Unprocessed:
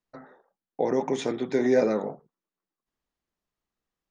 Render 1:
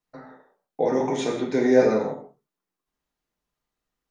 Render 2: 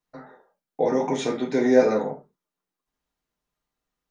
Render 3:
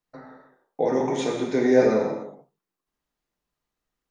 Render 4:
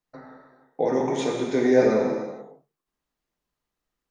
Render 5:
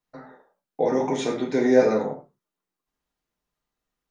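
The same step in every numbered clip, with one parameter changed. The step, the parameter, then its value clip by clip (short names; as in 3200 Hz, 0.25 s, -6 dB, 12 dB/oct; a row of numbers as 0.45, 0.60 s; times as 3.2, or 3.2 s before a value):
non-linear reverb, gate: 0.21, 0.1, 0.34, 0.5, 0.14 s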